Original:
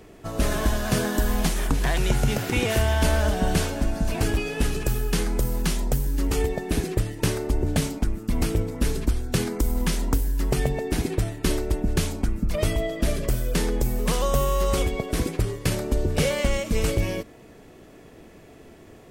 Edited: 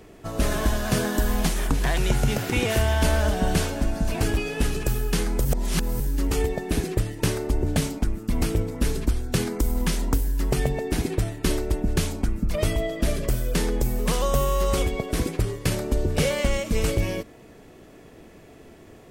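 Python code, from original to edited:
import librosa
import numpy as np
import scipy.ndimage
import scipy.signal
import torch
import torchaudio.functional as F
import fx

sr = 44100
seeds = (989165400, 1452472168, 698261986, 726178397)

y = fx.edit(x, sr, fx.reverse_span(start_s=5.45, length_s=0.55), tone=tone)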